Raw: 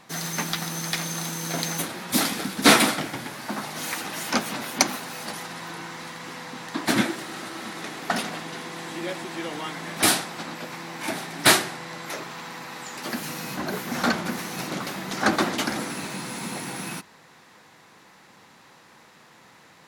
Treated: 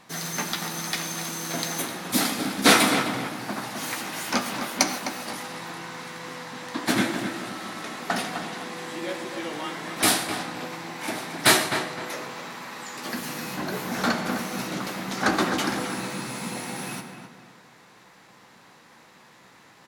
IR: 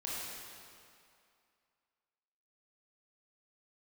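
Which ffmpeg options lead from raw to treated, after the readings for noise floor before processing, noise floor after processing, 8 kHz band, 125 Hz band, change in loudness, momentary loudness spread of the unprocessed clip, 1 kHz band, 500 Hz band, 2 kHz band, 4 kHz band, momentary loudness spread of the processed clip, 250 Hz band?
−53 dBFS, −53 dBFS, −1.0 dB, −1.0 dB, −0.5 dB, 15 LU, 0.0 dB, 0.0 dB, −0.5 dB, −0.5 dB, 14 LU, 0.0 dB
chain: -filter_complex "[0:a]asplit=2[link_01][link_02];[link_02]adelay=16,volume=-11dB[link_03];[link_01][link_03]amix=inputs=2:normalize=0,asplit=2[link_04][link_05];[link_05]adelay=257,lowpass=frequency=2400:poles=1,volume=-7dB,asplit=2[link_06][link_07];[link_07]adelay=257,lowpass=frequency=2400:poles=1,volume=0.38,asplit=2[link_08][link_09];[link_09]adelay=257,lowpass=frequency=2400:poles=1,volume=0.38,asplit=2[link_10][link_11];[link_11]adelay=257,lowpass=frequency=2400:poles=1,volume=0.38[link_12];[link_04][link_06][link_08][link_10][link_12]amix=inputs=5:normalize=0,asplit=2[link_13][link_14];[1:a]atrim=start_sample=2205,afade=type=out:start_time=0.21:duration=0.01,atrim=end_sample=9702[link_15];[link_14][link_15]afir=irnorm=-1:irlink=0,volume=-7dB[link_16];[link_13][link_16]amix=inputs=2:normalize=0,volume=-3.5dB"

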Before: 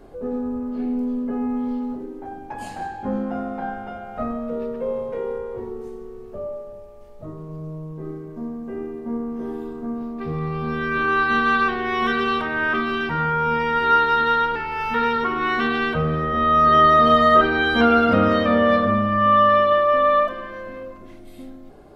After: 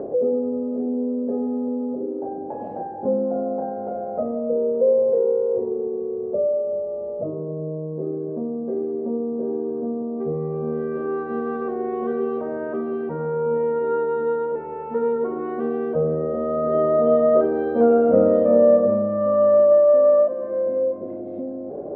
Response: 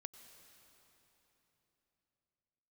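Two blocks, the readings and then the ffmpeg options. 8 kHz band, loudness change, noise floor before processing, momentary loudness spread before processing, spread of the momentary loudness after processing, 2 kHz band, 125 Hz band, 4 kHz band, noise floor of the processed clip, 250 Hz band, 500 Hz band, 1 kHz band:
can't be measured, −2.0 dB, −41 dBFS, 19 LU, 13 LU, −21.5 dB, −4.5 dB, below −30 dB, −32 dBFS, −1.0 dB, +6.0 dB, −12.5 dB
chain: -af "highpass=150,acompressor=mode=upward:threshold=-20dB:ratio=2.5,lowpass=frequency=540:width_type=q:width=3.8,volume=-3.5dB"

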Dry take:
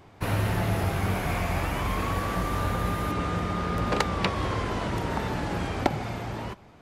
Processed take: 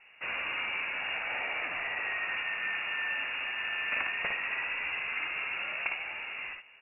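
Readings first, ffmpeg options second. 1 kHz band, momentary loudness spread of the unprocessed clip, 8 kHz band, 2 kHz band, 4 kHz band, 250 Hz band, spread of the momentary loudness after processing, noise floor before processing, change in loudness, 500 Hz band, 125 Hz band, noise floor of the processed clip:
−11.0 dB, 4 LU, below −40 dB, +4.5 dB, −0.5 dB, −26.0 dB, 4 LU, −52 dBFS, −4.0 dB, −16.0 dB, below −30 dB, −56 dBFS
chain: -filter_complex "[0:a]highpass=frequency=150:width=0.5412,highpass=frequency=150:width=1.3066,acrossover=split=200[link_01][link_02];[link_01]acompressor=threshold=-53dB:ratio=6[link_03];[link_03][link_02]amix=inputs=2:normalize=0,asoftclip=type=tanh:threshold=-19.5dB,aecho=1:1:57|72:0.531|0.335,lowpass=frequency=2600:width_type=q:width=0.5098,lowpass=frequency=2600:width_type=q:width=0.6013,lowpass=frequency=2600:width_type=q:width=0.9,lowpass=frequency=2600:width_type=q:width=2.563,afreqshift=-3000,volume=-4dB"

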